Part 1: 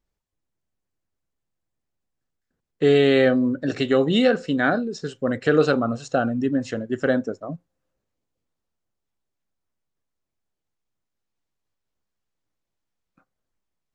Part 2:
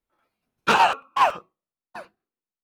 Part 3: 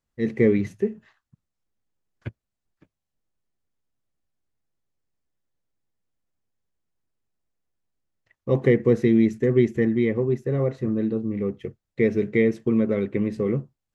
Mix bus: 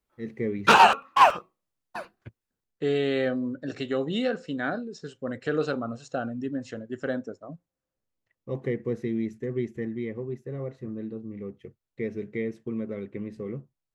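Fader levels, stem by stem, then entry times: -9.0 dB, +2.0 dB, -11.0 dB; 0.00 s, 0.00 s, 0.00 s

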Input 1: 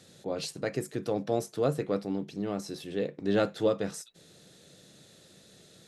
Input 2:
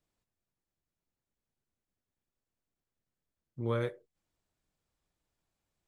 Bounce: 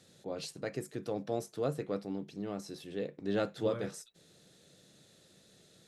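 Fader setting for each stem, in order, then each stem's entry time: -6.0 dB, -9.5 dB; 0.00 s, 0.00 s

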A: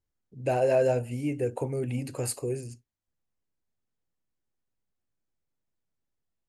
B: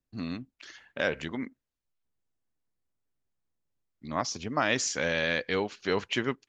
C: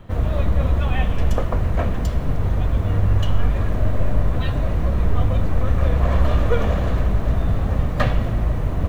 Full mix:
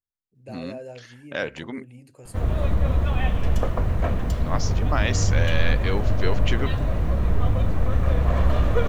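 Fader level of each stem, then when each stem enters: -14.5 dB, +0.5 dB, -2.5 dB; 0.00 s, 0.35 s, 2.25 s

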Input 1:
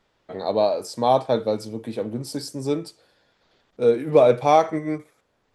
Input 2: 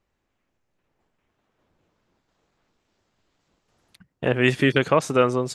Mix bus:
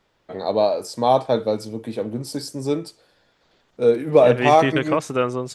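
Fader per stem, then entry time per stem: +1.5 dB, -2.5 dB; 0.00 s, 0.00 s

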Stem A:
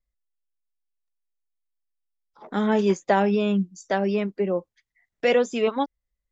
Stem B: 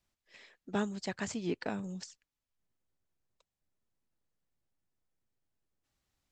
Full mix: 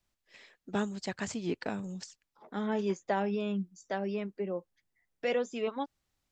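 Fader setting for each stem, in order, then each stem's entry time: -10.5 dB, +1.0 dB; 0.00 s, 0.00 s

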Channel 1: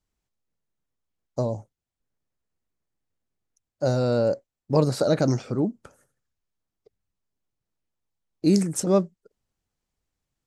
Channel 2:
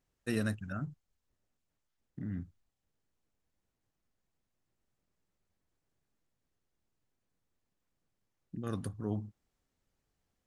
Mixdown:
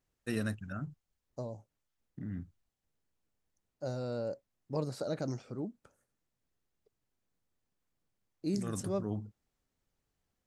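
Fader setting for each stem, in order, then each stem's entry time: -14.5 dB, -1.5 dB; 0.00 s, 0.00 s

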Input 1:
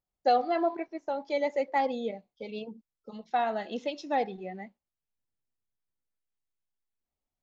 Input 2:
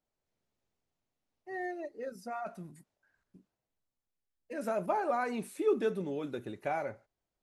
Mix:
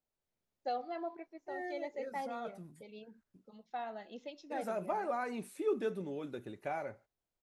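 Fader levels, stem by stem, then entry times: -13.0 dB, -4.5 dB; 0.40 s, 0.00 s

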